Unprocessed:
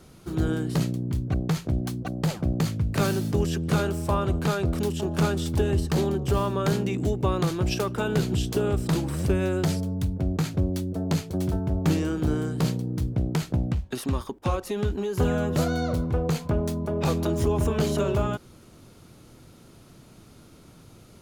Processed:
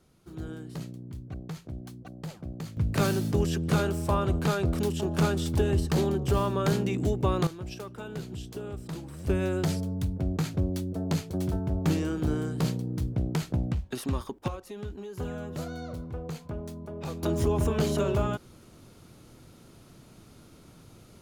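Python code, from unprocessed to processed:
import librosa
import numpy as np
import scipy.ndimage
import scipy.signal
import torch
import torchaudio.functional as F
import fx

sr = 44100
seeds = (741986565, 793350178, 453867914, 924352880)

y = fx.gain(x, sr, db=fx.steps((0.0, -13.0), (2.77, -1.5), (7.47, -13.0), (9.27, -3.0), (14.48, -11.5), (17.23, -2.0)))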